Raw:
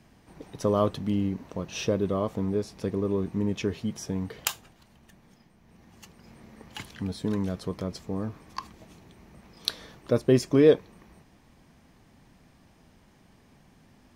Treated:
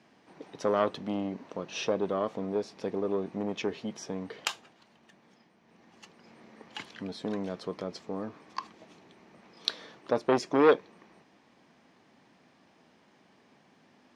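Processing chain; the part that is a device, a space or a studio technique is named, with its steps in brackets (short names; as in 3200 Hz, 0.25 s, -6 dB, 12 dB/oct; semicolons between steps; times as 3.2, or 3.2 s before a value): public-address speaker with an overloaded transformer (core saturation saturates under 1300 Hz; BPF 260–5300 Hz)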